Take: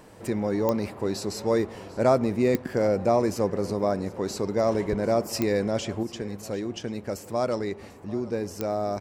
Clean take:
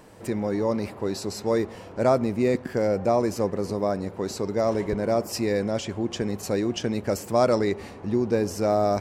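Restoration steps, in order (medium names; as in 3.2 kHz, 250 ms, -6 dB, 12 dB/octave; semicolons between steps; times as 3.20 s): de-click; inverse comb 743 ms -19.5 dB; trim 0 dB, from 6.03 s +6 dB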